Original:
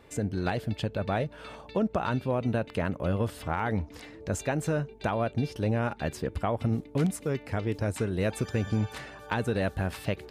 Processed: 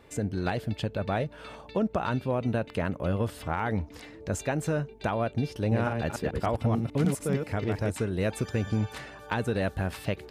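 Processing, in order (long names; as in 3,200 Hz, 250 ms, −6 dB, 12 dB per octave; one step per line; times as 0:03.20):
0:05.57–0:07.90: delay that plays each chunk backwards 148 ms, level −3.5 dB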